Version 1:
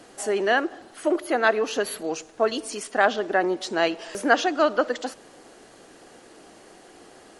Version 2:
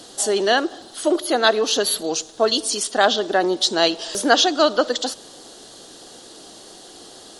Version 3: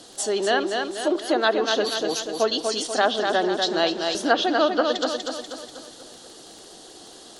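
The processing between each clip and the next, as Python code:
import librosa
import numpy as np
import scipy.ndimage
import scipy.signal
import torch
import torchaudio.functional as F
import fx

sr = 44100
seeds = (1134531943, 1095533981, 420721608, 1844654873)

y1 = fx.high_shelf_res(x, sr, hz=2900.0, db=7.0, q=3.0)
y1 = y1 * librosa.db_to_amplitude(4.0)
y2 = fx.echo_feedback(y1, sr, ms=243, feedback_pct=50, wet_db=-5.0)
y2 = fx.dmg_crackle(y2, sr, seeds[0], per_s=21.0, level_db=-29.0)
y2 = fx.env_lowpass_down(y2, sr, base_hz=1200.0, full_db=-7.5)
y2 = y2 * librosa.db_to_amplitude(-4.0)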